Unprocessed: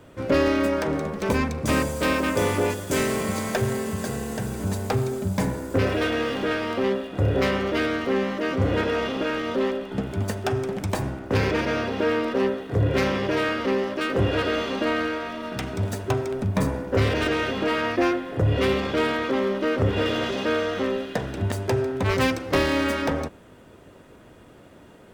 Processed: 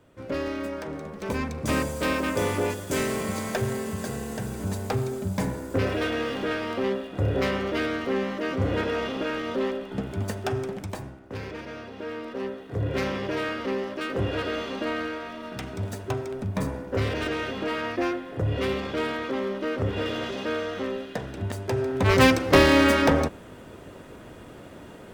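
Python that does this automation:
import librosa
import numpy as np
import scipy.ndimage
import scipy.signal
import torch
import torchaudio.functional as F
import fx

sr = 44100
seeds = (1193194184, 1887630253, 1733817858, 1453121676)

y = fx.gain(x, sr, db=fx.line((0.99, -9.5), (1.67, -3.0), (10.64, -3.0), (11.2, -13.5), (11.91, -13.5), (12.99, -5.0), (21.65, -5.0), (22.22, 5.0)))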